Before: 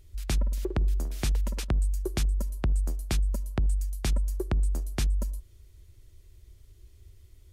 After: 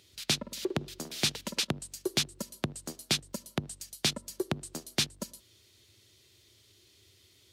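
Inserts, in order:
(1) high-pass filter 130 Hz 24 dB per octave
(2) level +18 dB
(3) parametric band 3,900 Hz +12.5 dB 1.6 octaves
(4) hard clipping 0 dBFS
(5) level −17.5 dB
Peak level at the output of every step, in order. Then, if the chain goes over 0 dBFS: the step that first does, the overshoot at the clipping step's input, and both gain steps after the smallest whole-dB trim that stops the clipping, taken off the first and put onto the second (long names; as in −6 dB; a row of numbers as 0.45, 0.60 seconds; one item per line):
−17.5, +0.5, +8.0, 0.0, −17.5 dBFS
step 2, 8.0 dB
step 2 +10 dB, step 5 −9.5 dB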